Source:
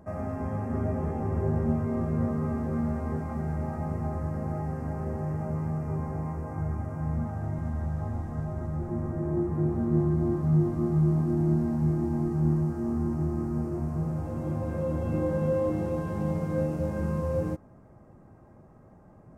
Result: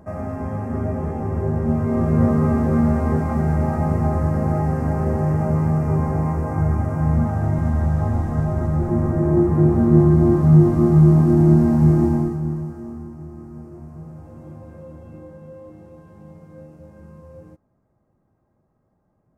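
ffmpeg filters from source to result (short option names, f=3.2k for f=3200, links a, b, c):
-af "volume=11.5dB,afade=t=in:st=1.61:d=0.67:silence=0.473151,afade=t=out:st=12.04:d=0.35:silence=0.298538,afade=t=out:st=12.39:d=0.73:silence=0.375837,afade=t=out:st=14.42:d=0.99:silence=0.473151"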